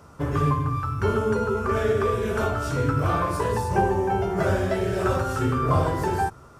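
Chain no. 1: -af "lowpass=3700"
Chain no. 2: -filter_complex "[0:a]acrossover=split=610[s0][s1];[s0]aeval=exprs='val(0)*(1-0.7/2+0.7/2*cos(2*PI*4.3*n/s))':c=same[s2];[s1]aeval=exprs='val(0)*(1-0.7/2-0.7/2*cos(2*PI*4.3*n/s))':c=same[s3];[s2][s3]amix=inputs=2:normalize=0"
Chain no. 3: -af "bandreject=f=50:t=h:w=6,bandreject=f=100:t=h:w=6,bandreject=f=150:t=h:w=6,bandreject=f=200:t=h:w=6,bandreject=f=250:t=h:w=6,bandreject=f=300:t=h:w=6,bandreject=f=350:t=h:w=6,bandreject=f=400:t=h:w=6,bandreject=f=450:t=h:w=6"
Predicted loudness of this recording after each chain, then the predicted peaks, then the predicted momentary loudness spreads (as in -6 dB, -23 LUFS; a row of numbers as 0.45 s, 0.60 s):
-24.0 LUFS, -27.5 LUFS, -24.5 LUFS; -9.0 dBFS, -11.0 dBFS, -9.5 dBFS; 3 LU, 3 LU, 3 LU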